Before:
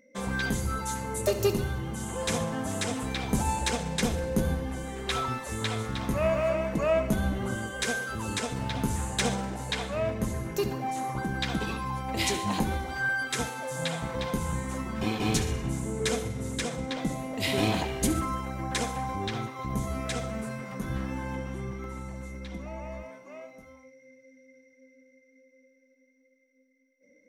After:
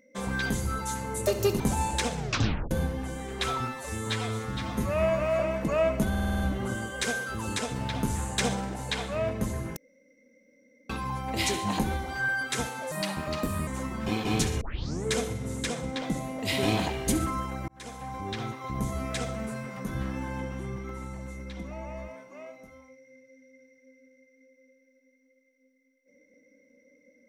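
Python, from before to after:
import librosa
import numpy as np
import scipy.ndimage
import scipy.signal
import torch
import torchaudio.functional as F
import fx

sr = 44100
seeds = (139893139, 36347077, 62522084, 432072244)

y = fx.edit(x, sr, fx.cut(start_s=1.6, length_s=1.68),
    fx.tape_stop(start_s=3.84, length_s=0.55),
    fx.stretch_span(start_s=5.35, length_s=1.15, factor=1.5),
    fx.stutter(start_s=7.2, slice_s=0.05, count=7),
    fx.room_tone_fill(start_s=10.57, length_s=1.13),
    fx.speed_span(start_s=13.72, length_s=0.9, speed=1.19),
    fx.tape_start(start_s=15.56, length_s=0.44),
    fx.fade_in_span(start_s=18.63, length_s=1.13, curve='qsin'), tone=tone)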